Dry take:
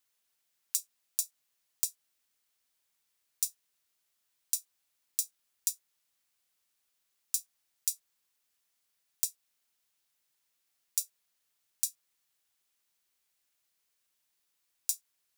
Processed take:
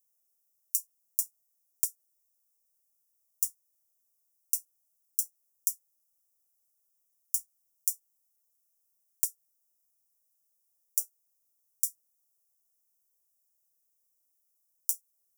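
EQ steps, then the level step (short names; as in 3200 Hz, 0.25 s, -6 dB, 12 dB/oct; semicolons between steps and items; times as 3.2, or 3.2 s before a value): elliptic band-stop 1100–5200 Hz; high shelf 7800 Hz +6 dB; fixed phaser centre 1000 Hz, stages 6; 0.0 dB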